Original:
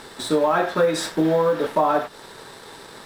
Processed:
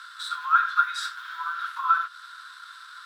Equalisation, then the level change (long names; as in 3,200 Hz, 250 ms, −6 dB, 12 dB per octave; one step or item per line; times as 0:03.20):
Chebyshev high-pass with heavy ripple 1,000 Hz, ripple 9 dB
parametric band 1,400 Hz +14.5 dB 0.5 octaves
−3.0 dB